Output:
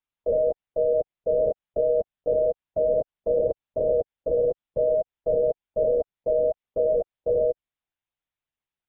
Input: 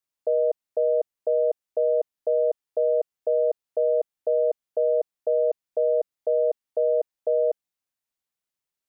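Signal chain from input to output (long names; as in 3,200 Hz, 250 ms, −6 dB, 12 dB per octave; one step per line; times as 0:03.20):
linear-prediction vocoder at 8 kHz whisper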